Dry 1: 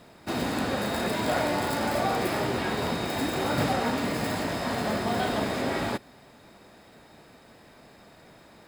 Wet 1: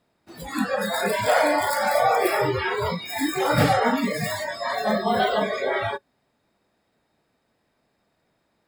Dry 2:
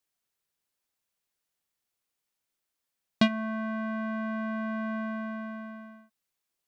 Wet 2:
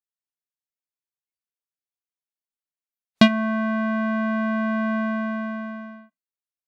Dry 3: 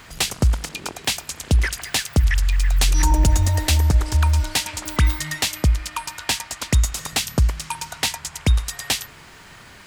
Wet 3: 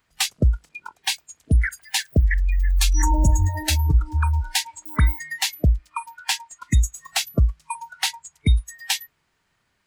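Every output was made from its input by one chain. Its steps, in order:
noise reduction from a noise print of the clip's start 26 dB
loudness normalisation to −23 LKFS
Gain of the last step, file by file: +8.0, +9.0, 0.0 decibels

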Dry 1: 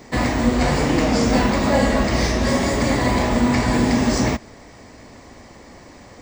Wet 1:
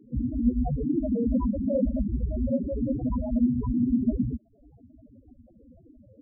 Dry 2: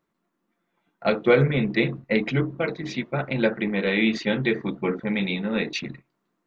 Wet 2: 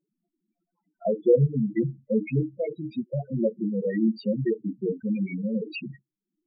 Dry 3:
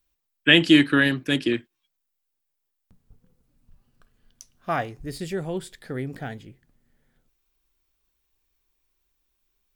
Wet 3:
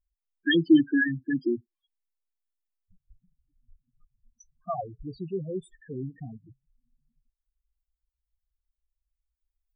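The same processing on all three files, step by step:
spectral peaks only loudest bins 4
reverb reduction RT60 0.51 s
loudness normalisation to −27 LKFS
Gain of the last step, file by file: −2.5, +1.0, −1.5 decibels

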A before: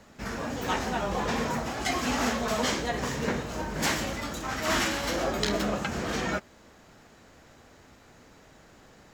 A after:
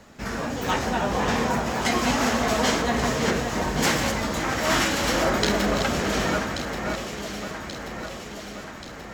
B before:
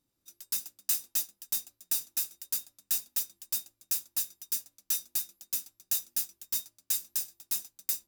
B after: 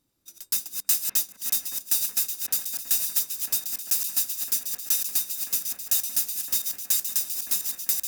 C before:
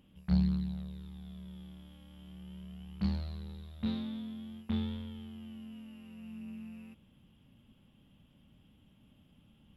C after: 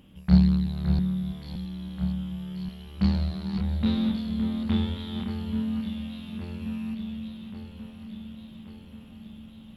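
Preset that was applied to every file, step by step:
delay that plays each chunk backwards 331 ms, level −7 dB
delay that swaps between a low-pass and a high-pass 566 ms, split 2,200 Hz, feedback 77%, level −6.5 dB
normalise the peak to −6 dBFS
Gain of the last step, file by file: +4.0, +6.0, +9.0 decibels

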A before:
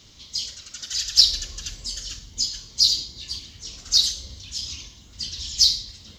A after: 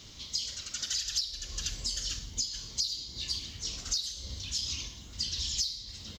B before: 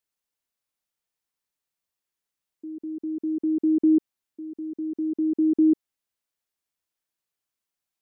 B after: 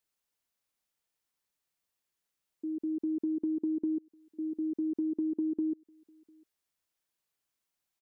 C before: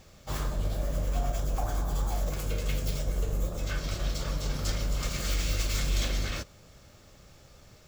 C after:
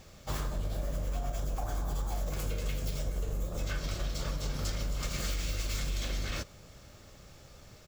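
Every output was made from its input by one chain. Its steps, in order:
downward compressor 16 to 1, threshold −30 dBFS
slap from a distant wall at 120 metres, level −29 dB
level +1 dB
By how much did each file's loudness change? −12.0, −9.0, −4.0 LU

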